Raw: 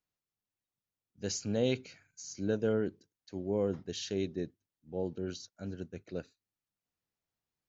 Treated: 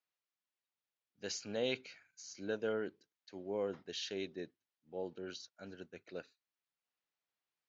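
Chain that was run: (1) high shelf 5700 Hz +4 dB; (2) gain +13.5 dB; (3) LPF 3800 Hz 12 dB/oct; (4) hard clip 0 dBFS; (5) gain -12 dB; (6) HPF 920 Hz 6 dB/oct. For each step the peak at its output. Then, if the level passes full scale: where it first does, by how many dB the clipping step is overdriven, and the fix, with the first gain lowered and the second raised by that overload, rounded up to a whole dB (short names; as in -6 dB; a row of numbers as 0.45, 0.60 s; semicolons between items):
-17.0, -3.5, -4.0, -4.0, -16.0, -24.0 dBFS; no overload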